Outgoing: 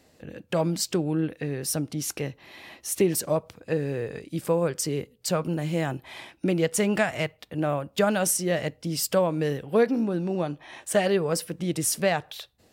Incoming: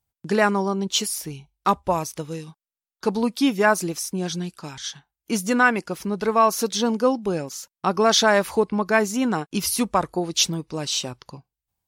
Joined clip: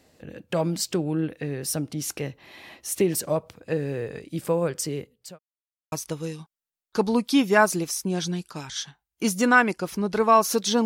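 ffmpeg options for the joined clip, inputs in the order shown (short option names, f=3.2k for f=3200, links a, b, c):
-filter_complex "[0:a]apad=whole_dur=10.85,atrim=end=10.85,asplit=2[a][b];[a]atrim=end=5.39,asetpts=PTS-STARTPTS,afade=t=out:st=4.63:d=0.76:c=qsin[c];[b]atrim=start=5.39:end=5.92,asetpts=PTS-STARTPTS,volume=0[d];[1:a]atrim=start=2:end=6.93,asetpts=PTS-STARTPTS,afade=t=in:d=0.004:c=hsin[e];[c][d][e]concat=n=3:v=0:a=1"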